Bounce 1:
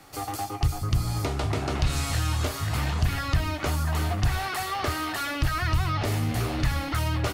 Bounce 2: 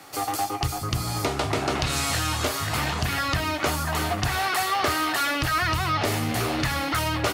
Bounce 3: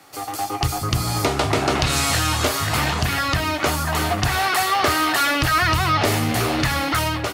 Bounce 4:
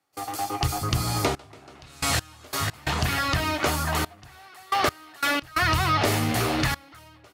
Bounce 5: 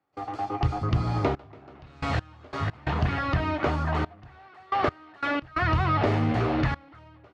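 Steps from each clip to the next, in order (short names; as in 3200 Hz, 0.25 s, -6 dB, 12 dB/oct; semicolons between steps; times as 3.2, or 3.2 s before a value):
HPF 280 Hz 6 dB/oct; gain +6 dB
AGC gain up to 11.5 dB; gain -3 dB
step gate ".xxxxxxx....x..x" 89 bpm -24 dB; gain -3.5 dB
tape spacing loss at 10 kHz 38 dB; gain +2 dB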